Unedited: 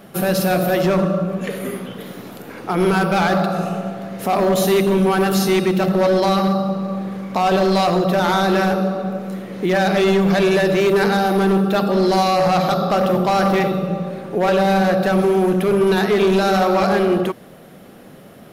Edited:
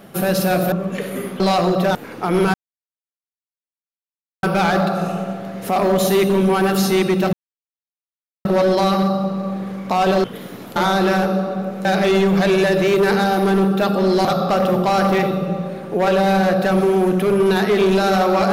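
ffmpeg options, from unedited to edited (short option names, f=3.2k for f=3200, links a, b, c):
-filter_complex "[0:a]asplit=10[a][b][c][d][e][f][g][h][i][j];[a]atrim=end=0.722[k];[b]atrim=start=1.208:end=1.892[l];[c]atrim=start=7.688:end=8.242[m];[d]atrim=start=2.408:end=3,asetpts=PTS-STARTPTS,afade=t=out:st=0.588:d=0.004:c=hsin,apad=pad_dur=1.89[n];[e]atrim=start=3:end=5.9,asetpts=PTS-STARTPTS,afade=t=in:d=0.004:c=hsin,afade=t=out:st=2.896:d=0.004:c=hsin,apad=pad_dur=1.12[o];[f]atrim=start=5.9:end=7.692,asetpts=PTS-STARTPTS,afade=t=in:d=0.004:c=hsin[p];[g]atrim=start=1.888:end=2.412[q];[h]atrim=start=8.238:end=9.332[r];[i]atrim=start=9.778:end=12.182[s];[j]atrim=start=12.658[t];[k][l]acrossfade=d=0.004:c1=hsin:c2=hsin[u];[u][m]acrossfade=d=0.004:c1=hsin:c2=hsin[v];[n][o][p]concat=n=3:v=0:a=1[w];[v][w]acrossfade=d=0.004:c1=hsin:c2=hsin[x];[x][q]acrossfade=d=0.004:c1=hsin:c2=hsin[y];[y][r]acrossfade=d=0.004:c1=hsin:c2=hsin[z];[z][s]acrossfade=d=0.004:c1=hsin:c2=hsin[aa];[aa][t]acrossfade=d=0.004:c1=hsin:c2=hsin"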